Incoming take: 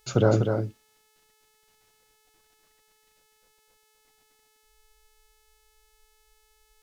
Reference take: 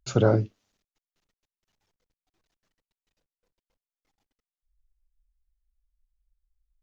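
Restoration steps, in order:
hum removal 432.5 Hz, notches 38
echo removal 247 ms −6 dB
level 0 dB, from 0:00.63 −5 dB

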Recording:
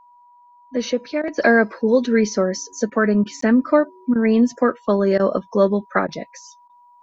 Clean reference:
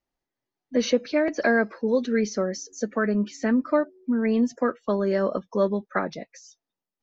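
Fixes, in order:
notch filter 970 Hz, Q 30
repair the gap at 0:03.41, 14 ms
repair the gap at 0:01.22/0:02.90/0:03.24/0:04.14/0:05.18/0:06.07/0:06.68, 14 ms
level 0 dB, from 0:01.38 −6.5 dB

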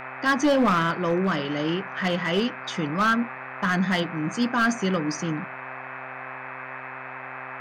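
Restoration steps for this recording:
clipped peaks rebuilt −15.5 dBFS
hum removal 130 Hz, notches 20
noise reduction from a noise print 30 dB

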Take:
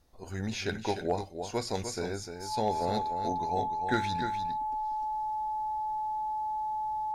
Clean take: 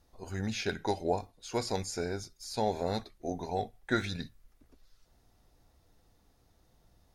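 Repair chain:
clipped peaks rebuilt −18.5 dBFS
notch filter 860 Hz, Q 30
echo removal 300 ms −8 dB
level correction −5.5 dB, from 0:04.29

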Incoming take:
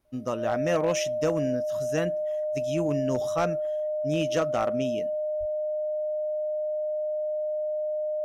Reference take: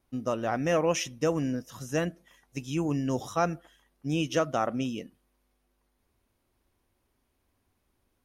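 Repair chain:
clipped peaks rebuilt −18 dBFS
notch filter 610 Hz, Q 30
high-pass at the plosives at 0:05.39

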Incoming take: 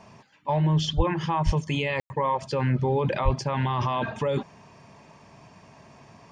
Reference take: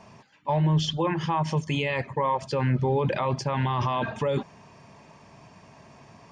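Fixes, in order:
0:00.96–0:01.08: high-pass filter 140 Hz 24 dB per octave
0:01.45–0:01.57: high-pass filter 140 Hz 24 dB per octave
0:03.24–0:03.36: high-pass filter 140 Hz 24 dB per octave
ambience match 0:02.00–0:02.10

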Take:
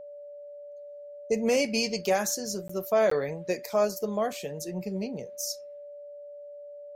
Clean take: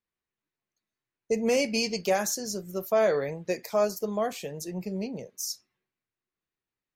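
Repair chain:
notch filter 580 Hz, Q 30
repair the gap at 0:02.68/0:03.10, 14 ms

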